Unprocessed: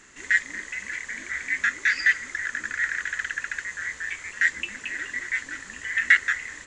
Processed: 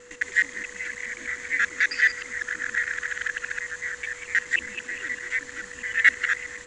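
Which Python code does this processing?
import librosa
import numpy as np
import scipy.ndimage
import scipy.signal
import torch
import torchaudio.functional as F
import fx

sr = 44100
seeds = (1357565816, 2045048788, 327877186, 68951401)

y = fx.local_reverse(x, sr, ms=106.0)
y = y + 10.0 ** (-48.0 / 20.0) * np.sin(2.0 * np.pi * 490.0 * np.arange(len(y)) / sr)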